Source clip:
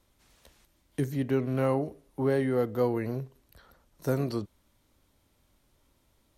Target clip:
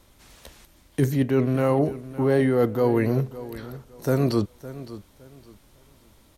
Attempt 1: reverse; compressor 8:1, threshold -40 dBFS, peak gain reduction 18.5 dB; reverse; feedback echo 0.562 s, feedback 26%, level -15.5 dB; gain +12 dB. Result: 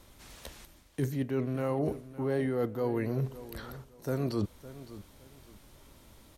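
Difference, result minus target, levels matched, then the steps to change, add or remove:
compressor: peak gain reduction +10 dB
change: compressor 8:1, threshold -28.5 dBFS, peak gain reduction 8.5 dB

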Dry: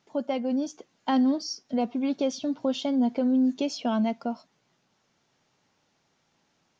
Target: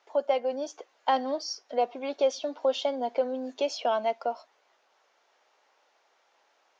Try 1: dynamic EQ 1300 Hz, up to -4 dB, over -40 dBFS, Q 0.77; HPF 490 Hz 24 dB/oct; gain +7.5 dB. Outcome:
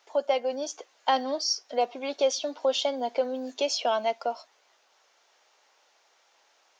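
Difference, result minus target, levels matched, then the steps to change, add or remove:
8000 Hz band +7.5 dB
add after HPF: high shelf 3400 Hz -11.5 dB

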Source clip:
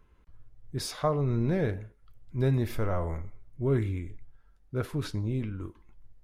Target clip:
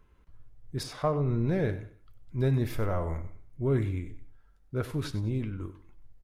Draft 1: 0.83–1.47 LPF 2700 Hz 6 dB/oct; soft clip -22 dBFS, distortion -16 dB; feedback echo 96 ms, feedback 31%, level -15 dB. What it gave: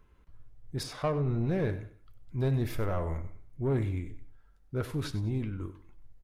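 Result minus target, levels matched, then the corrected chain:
soft clip: distortion +15 dB
0.83–1.47 LPF 2700 Hz 6 dB/oct; soft clip -12.5 dBFS, distortion -31 dB; feedback echo 96 ms, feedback 31%, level -15 dB

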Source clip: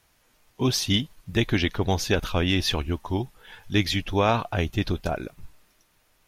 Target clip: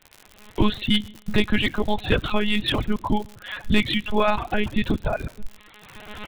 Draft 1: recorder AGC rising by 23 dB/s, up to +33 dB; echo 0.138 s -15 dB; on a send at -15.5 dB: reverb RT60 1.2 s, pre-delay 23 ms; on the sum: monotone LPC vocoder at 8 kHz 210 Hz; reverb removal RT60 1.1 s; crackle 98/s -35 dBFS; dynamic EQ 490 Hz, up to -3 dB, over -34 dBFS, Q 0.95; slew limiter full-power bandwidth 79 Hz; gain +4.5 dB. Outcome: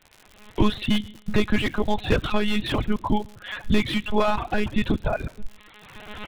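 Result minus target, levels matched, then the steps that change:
slew limiter: distortion +11 dB
change: slew limiter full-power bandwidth 246.5 Hz

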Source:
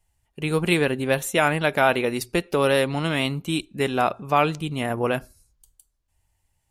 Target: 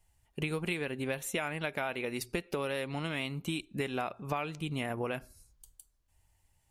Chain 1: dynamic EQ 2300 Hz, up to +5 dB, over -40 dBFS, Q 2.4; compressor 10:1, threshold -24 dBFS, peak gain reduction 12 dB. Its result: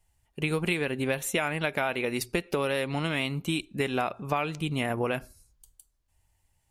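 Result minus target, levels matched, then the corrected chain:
compressor: peak gain reduction -6.5 dB
dynamic EQ 2300 Hz, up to +5 dB, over -40 dBFS, Q 2.4; compressor 10:1, threshold -31 dBFS, peak gain reduction 18 dB

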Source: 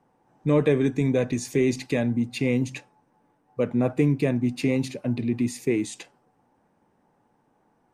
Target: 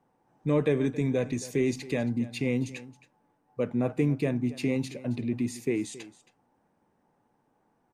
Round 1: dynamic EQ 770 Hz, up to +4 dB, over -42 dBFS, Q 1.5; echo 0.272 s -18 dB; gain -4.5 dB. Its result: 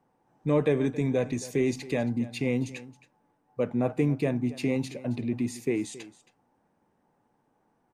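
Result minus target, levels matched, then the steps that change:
1000 Hz band +2.5 dB
remove: dynamic EQ 770 Hz, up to +4 dB, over -42 dBFS, Q 1.5

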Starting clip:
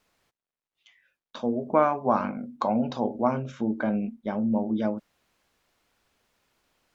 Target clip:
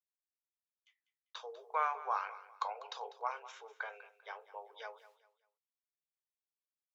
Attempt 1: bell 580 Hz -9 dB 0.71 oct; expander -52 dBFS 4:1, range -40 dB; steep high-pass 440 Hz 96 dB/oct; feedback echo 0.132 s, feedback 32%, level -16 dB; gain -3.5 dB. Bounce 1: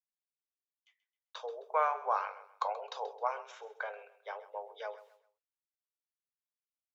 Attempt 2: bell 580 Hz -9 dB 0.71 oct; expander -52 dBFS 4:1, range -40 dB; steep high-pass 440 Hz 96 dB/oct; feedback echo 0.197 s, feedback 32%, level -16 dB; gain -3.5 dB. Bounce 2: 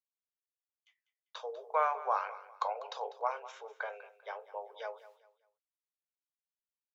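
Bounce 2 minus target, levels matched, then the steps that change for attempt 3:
500 Hz band +5.0 dB
change: bell 580 Hz -20.5 dB 0.71 oct

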